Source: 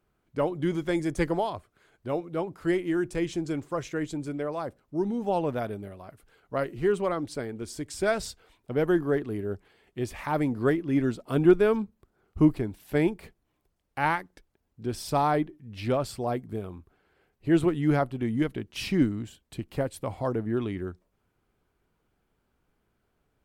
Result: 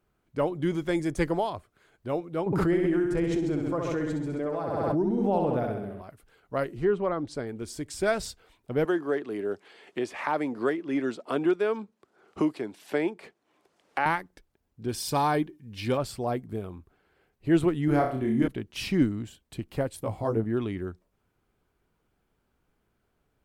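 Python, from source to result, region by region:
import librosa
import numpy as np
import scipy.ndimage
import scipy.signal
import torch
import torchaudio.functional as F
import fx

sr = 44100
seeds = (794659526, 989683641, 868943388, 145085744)

y = fx.chain(x, sr, fx.high_shelf(hz=2000.0, db=-10.5),
    fx.room_flutter(wall_m=11.2, rt60_s=0.88),
    fx.pre_swell(db_per_s=23.0), at=(2.46, 6.02))
y = fx.chain(y, sr, fx.env_lowpass_down(base_hz=2700.0, full_db=-23.0),
    fx.peak_eq(hz=2500.0, db=-4.0, octaves=0.89), at=(6.67, 7.47))
y = fx.chain(y, sr, fx.bandpass_edges(low_hz=330.0, high_hz=7900.0),
    fx.band_squash(depth_pct=70), at=(8.85, 14.06))
y = fx.chain(y, sr, fx.high_shelf(hz=2400.0, db=7.0),
    fx.notch_comb(f0_hz=660.0), at=(14.88, 15.98))
y = fx.chain(y, sr, fx.peak_eq(hz=3800.0, db=-5.5, octaves=2.0),
    fx.doubler(ms=28.0, db=-13.0),
    fx.room_flutter(wall_m=5.3, rt60_s=0.47), at=(17.85, 18.48))
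y = fx.chain(y, sr, fx.peak_eq(hz=2500.0, db=-5.5, octaves=2.6),
    fx.doubler(ms=18.0, db=-2.5), at=(19.96, 20.44))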